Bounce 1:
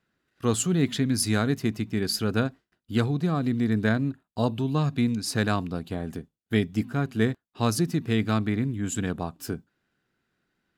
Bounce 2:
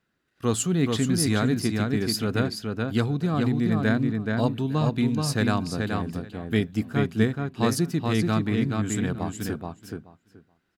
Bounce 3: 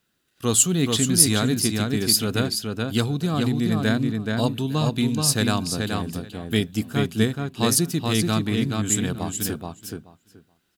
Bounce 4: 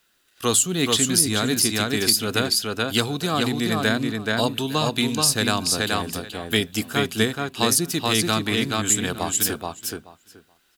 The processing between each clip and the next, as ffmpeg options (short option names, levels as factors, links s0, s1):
-filter_complex "[0:a]asplit=2[s0][s1];[s1]adelay=428,lowpass=f=4400:p=1,volume=0.668,asplit=2[s2][s3];[s3]adelay=428,lowpass=f=4400:p=1,volume=0.16,asplit=2[s4][s5];[s5]adelay=428,lowpass=f=4400:p=1,volume=0.16[s6];[s0][s2][s4][s6]amix=inputs=4:normalize=0"
-af "aexciter=amount=3:drive=3.7:freq=2800,volume=1.12"
-filter_complex "[0:a]acrossover=split=380[s0][s1];[s1]acompressor=threshold=0.0562:ratio=6[s2];[s0][s2]amix=inputs=2:normalize=0,equalizer=f=140:w=0.48:g=-14,volume=2.66"